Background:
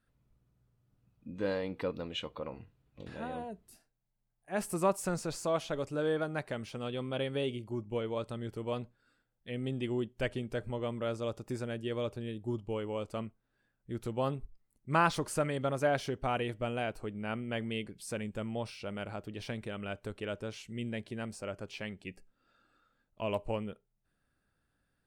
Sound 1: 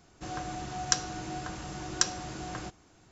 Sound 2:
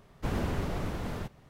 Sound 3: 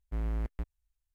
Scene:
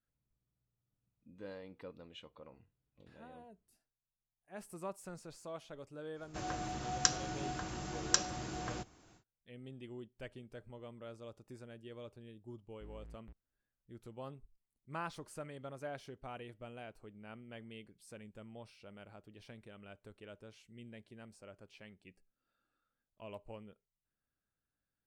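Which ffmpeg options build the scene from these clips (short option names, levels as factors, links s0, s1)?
-filter_complex "[0:a]volume=0.188[s0];[3:a]asoftclip=type=tanh:threshold=0.015[s1];[1:a]atrim=end=3.11,asetpts=PTS-STARTPTS,volume=0.708,afade=t=in:d=0.1,afade=t=out:st=3.01:d=0.1,adelay=6130[s2];[s1]atrim=end=1.14,asetpts=PTS-STARTPTS,volume=0.211,afade=t=in:d=0.004:c=hsin,afade=t=out:st=1.136:d=0.004:c=hsin,adelay=12690[s3];[s0][s2][s3]amix=inputs=3:normalize=0"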